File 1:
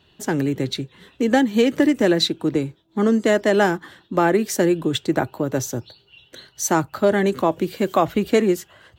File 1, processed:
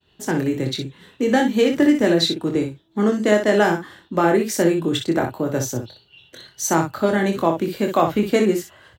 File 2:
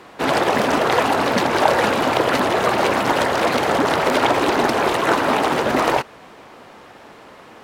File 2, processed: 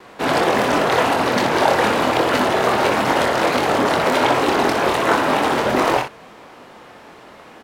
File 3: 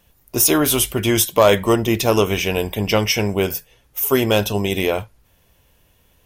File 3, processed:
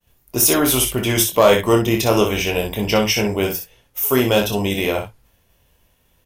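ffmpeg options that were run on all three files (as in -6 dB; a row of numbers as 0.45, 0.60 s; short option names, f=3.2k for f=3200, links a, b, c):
-af "agate=range=-33dB:threshold=-53dB:ratio=3:detection=peak,aecho=1:1:24|61:0.531|0.447,volume=-1dB"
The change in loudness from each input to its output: +0.5, +0.5, +0.5 LU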